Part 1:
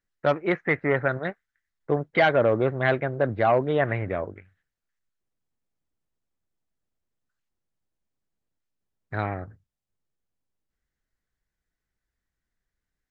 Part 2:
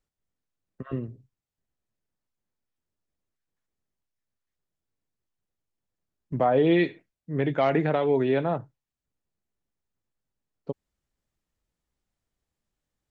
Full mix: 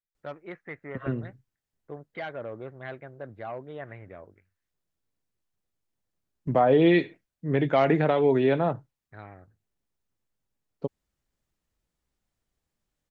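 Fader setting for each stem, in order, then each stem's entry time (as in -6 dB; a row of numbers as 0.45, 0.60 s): -16.5, +1.5 dB; 0.00, 0.15 s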